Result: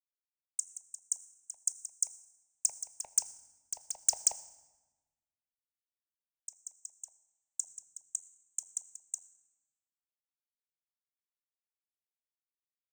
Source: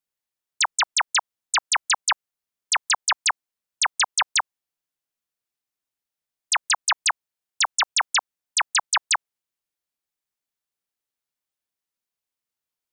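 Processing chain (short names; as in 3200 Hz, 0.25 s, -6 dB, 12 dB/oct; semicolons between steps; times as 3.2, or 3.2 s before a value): Doppler pass-by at 3.9, 9 m/s, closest 5.1 m; elliptic band-stop 620–7200 Hz, stop band 40 dB; passive tone stack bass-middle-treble 10-0-10; sample leveller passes 3; step gate "xx...x....xxx.." 149 bpm -12 dB; reverb RT60 1.3 s, pre-delay 5 ms, DRR 12.5 dB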